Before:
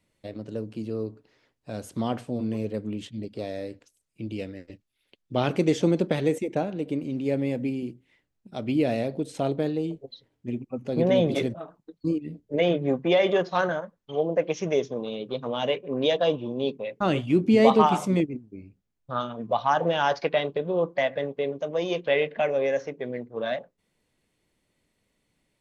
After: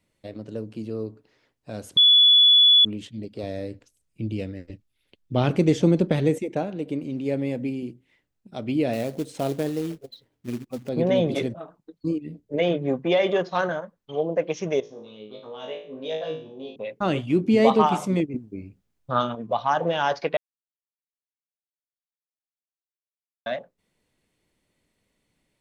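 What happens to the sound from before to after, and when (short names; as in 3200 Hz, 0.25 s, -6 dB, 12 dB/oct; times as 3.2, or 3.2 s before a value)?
1.97–2.85 bleep 3420 Hz -11.5 dBFS
3.43–6.41 low shelf 180 Hz +10.5 dB
8.93–10.89 short-mantissa float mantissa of 2-bit
14.8–16.76 resonator 53 Hz, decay 0.47 s, mix 100%
18.34–19.35 gain +6 dB
20.37–23.46 mute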